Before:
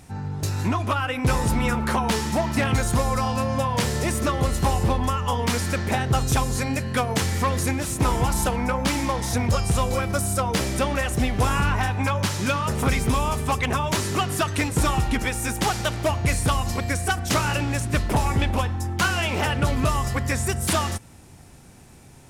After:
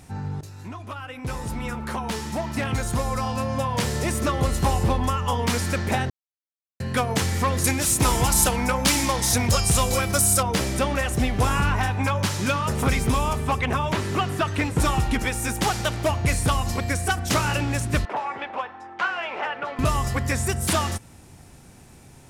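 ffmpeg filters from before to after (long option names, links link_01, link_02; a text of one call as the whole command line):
ffmpeg -i in.wav -filter_complex "[0:a]asettb=1/sr,asplit=3[link_01][link_02][link_03];[link_01]atrim=end=7.644[link_04];[link_02]atrim=start=7.64:end=10.43,asetpts=PTS-STARTPTS,afade=type=in:duration=0.004:curve=qsin,afade=type=out:start_time=2.786:duration=0.004:curve=qsin,highshelf=frequency=2900:gain=10.5[link_05];[link_03]atrim=start=10.426[link_06];[link_04][link_05]acrossfade=duration=0.004:curve1=hsin:curve2=qsin[link_07];[link_07][link_06]acrossfade=duration=0.004:curve1=qsin:curve2=hsin,asettb=1/sr,asplit=3[link_08][link_09][link_10];[link_08]atrim=end=13.334[link_11];[link_09]atrim=start=13.33:end=14.8,asetpts=PTS-STARTPTS,afade=type=in:duration=0.004:curve=qsin,afade=type=out:start_time=1.466:duration=0.004:curve=qsin,acrossover=split=3500[link_12][link_13];[link_13]acompressor=threshold=-41dB:ratio=4:attack=1:release=60[link_14];[link_12][link_14]amix=inputs=2:normalize=0[link_15];[link_10]atrim=start=14.796[link_16];[link_11][link_15]acrossfade=duration=0.004:curve1=hsin:curve2=qsin[link_17];[link_17][link_16]acrossfade=duration=0.004:curve1=qsin:curve2=hsin,asettb=1/sr,asplit=3[link_18][link_19][link_20];[link_18]atrim=end=18.054[link_21];[link_19]atrim=start=18.05:end=19.79,asetpts=PTS-STARTPTS,afade=type=in:duration=0.004:curve=qsin,afade=type=out:start_time=1.736:duration=0.004:curve=qsin,highpass=630,lowpass=2000[link_22];[link_20]atrim=start=19.786[link_23];[link_21][link_22]acrossfade=duration=0.004:curve1=hsin:curve2=qsin[link_24];[link_24][link_23]acrossfade=duration=0.004:curve1=qsin:curve2=hsin,asplit=4[link_25][link_26][link_27][link_28];[link_25]atrim=end=0.41,asetpts=PTS-STARTPTS,afade=type=out:start_time=0.406:duration=0.004:curve=hsin:silence=0.158489[link_29];[link_26]atrim=start=0.41:end=6.1,asetpts=PTS-STARTPTS,afade=type=in:duration=4.05:silence=0.158489,afade=type=out:start_time=5.686:duration=0.004:curve=hsin[link_30];[link_27]atrim=start=6.1:end=6.8,asetpts=PTS-STARTPTS,volume=0[link_31];[link_28]atrim=start=6.8,asetpts=PTS-STARTPTS,afade=type=in:duration=0.004:curve=hsin[link_32];[link_29][link_30][link_31][link_32]concat=n=4:v=0:a=1" out.wav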